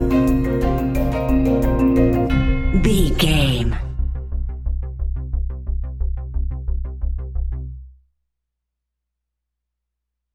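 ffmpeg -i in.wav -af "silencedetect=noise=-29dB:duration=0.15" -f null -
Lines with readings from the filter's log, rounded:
silence_start: 7.76
silence_end: 10.34 | silence_duration: 2.59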